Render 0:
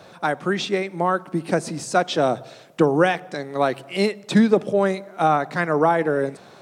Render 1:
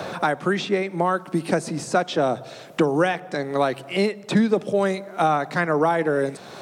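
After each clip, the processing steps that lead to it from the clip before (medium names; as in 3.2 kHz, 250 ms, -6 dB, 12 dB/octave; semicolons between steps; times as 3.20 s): three bands compressed up and down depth 70%; trim -1.5 dB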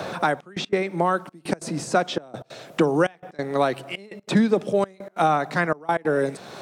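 trance gate "xxxxx..x.xx" 186 bpm -24 dB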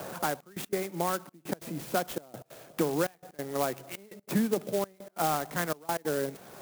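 sampling jitter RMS 0.07 ms; trim -8.5 dB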